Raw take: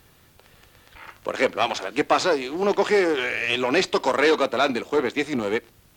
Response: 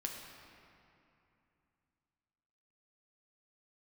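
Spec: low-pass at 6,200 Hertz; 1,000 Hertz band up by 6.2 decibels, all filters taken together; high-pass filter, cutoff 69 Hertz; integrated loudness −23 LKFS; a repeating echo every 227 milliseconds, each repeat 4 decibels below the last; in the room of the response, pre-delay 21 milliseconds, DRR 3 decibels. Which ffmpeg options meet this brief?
-filter_complex "[0:a]highpass=69,lowpass=6200,equalizer=frequency=1000:width_type=o:gain=8,aecho=1:1:227|454|681|908|1135|1362|1589|1816|2043:0.631|0.398|0.25|0.158|0.0994|0.0626|0.0394|0.0249|0.0157,asplit=2[link_01][link_02];[1:a]atrim=start_sample=2205,adelay=21[link_03];[link_02][link_03]afir=irnorm=-1:irlink=0,volume=-3dB[link_04];[link_01][link_04]amix=inputs=2:normalize=0,volume=-7dB"

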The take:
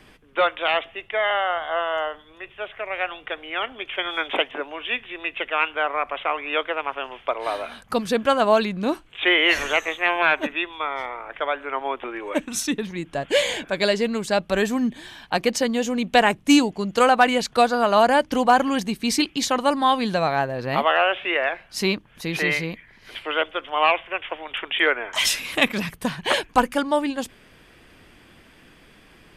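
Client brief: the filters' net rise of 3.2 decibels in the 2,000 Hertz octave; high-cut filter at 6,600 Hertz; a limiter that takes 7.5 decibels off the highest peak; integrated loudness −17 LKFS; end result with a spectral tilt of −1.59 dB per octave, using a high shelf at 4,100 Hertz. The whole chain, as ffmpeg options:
ffmpeg -i in.wav -af "lowpass=6600,equalizer=frequency=2000:width_type=o:gain=5,highshelf=frequency=4100:gain=-4.5,volume=6.5dB,alimiter=limit=-3.5dB:level=0:latency=1" out.wav

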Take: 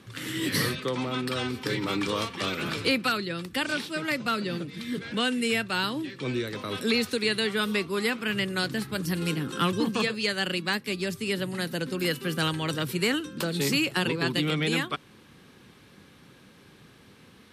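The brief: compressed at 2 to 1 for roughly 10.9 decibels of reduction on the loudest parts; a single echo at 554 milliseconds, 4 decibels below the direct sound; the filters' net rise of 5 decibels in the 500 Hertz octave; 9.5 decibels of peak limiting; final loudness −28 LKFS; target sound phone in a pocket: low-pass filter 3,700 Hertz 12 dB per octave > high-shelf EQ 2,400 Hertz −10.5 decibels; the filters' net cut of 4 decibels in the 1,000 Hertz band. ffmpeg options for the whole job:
ffmpeg -i in.wav -af "equalizer=frequency=500:width_type=o:gain=7.5,equalizer=frequency=1000:width_type=o:gain=-5,acompressor=threshold=-39dB:ratio=2,alimiter=level_in=6dB:limit=-24dB:level=0:latency=1,volume=-6dB,lowpass=3700,highshelf=frequency=2400:gain=-10.5,aecho=1:1:554:0.631,volume=11dB" out.wav

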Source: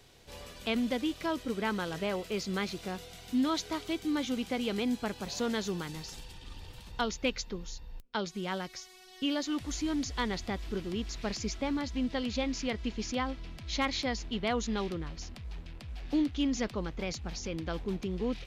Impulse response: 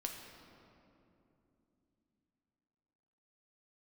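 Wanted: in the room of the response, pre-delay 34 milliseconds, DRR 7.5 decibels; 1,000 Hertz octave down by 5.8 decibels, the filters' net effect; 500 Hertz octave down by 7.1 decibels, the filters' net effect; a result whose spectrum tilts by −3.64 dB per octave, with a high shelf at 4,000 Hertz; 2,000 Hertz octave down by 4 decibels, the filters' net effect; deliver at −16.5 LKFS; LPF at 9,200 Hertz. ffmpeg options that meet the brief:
-filter_complex "[0:a]lowpass=9200,equalizer=frequency=500:width_type=o:gain=-8,equalizer=frequency=1000:width_type=o:gain=-4,equalizer=frequency=2000:width_type=o:gain=-5,highshelf=frequency=4000:gain=6,asplit=2[link_01][link_02];[1:a]atrim=start_sample=2205,adelay=34[link_03];[link_02][link_03]afir=irnorm=-1:irlink=0,volume=-6.5dB[link_04];[link_01][link_04]amix=inputs=2:normalize=0,volume=19dB"

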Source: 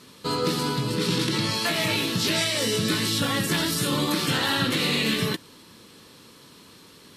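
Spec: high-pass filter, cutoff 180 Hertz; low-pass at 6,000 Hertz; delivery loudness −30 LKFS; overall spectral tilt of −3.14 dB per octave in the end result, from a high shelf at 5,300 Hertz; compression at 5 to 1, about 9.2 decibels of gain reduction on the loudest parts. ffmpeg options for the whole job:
ffmpeg -i in.wav -af "highpass=180,lowpass=6000,highshelf=frequency=5300:gain=4,acompressor=threshold=-31dB:ratio=5,volume=2.5dB" out.wav

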